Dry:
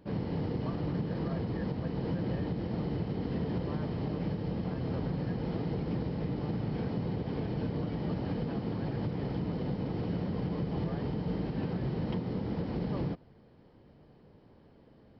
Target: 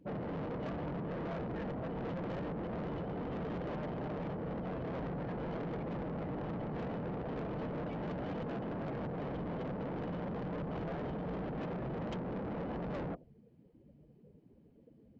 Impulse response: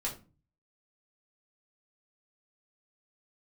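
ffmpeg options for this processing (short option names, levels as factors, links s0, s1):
-af "afftdn=nr=22:nf=-48,equalizer=f=100:t=o:w=0.67:g=-8,equalizer=f=630:t=o:w=0.67:g=8,equalizer=f=2500:t=o:w=0.67:g=8,aresample=16000,asoftclip=type=tanh:threshold=0.0112,aresample=44100,volume=1.33"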